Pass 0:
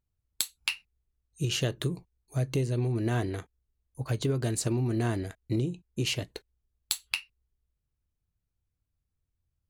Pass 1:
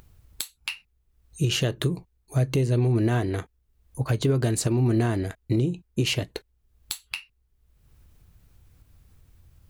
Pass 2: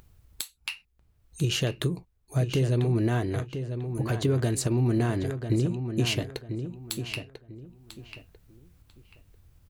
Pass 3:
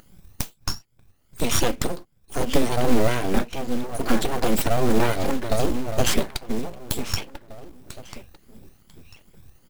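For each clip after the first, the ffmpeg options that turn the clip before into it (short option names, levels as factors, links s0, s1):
-af "equalizer=f=6800:w=0.55:g=-3.5,acompressor=mode=upward:threshold=0.00501:ratio=2.5,alimiter=limit=0.0841:level=0:latency=1:release=221,volume=2.51"
-filter_complex "[0:a]asplit=2[s0][s1];[s1]adelay=994,lowpass=f=3200:p=1,volume=0.398,asplit=2[s2][s3];[s3]adelay=994,lowpass=f=3200:p=1,volume=0.27,asplit=2[s4][s5];[s5]adelay=994,lowpass=f=3200:p=1,volume=0.27[s6];[s0][s2][s4][s6]amix=inputs=4:normalize=0,volume=0.75"
-af "afftfilt=real='re*pow(10,21/40*sin(2*PI*(1.7*log(max(b,1)*sr/1024/100)/log(2)-(2.5)*(pts-256)/sr)))':imag='im*pow(10,21/40*sin(2*PI*(1.7*log(max(b,1)*sr/1024/100)/log(2)-(2.5)*(pts-256)/sr)))':win_size=1024:overlap=0.75,aeval=exprs='abs(val(0))':c=same,acrusher=bits=5:mode=log:mix=0:aa=0.000001,volume=1.58"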